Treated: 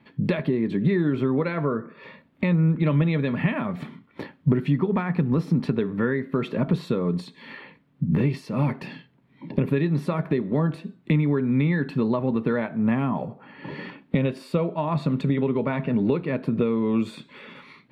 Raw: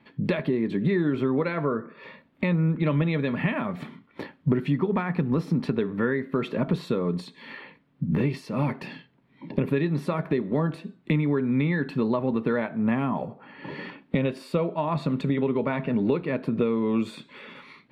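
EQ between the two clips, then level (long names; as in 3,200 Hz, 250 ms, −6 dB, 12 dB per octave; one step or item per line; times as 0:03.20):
parametric band 120 Hz +4 dB 1.8 octaves
0.0 dB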